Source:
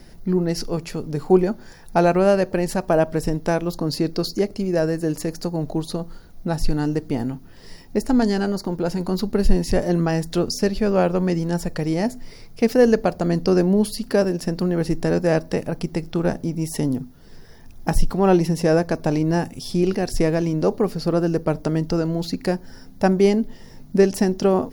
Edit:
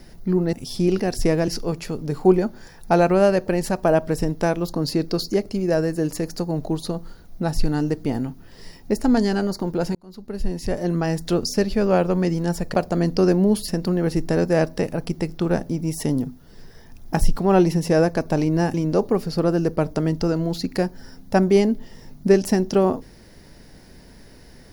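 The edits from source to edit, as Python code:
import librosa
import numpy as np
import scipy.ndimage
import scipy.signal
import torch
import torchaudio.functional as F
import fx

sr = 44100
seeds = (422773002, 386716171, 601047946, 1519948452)

y = fx.edit(x, sr, fx.fade_in_span(start_s=9.0, length_s=1.33),
    fx.cut(start_s=11.79, length_s=1.24),
    fx.cut(start_s=13.97, length_s=0.45),
    fx.move(start_s=19.48, length_s=0.95, to_s=0.53), tone=tone)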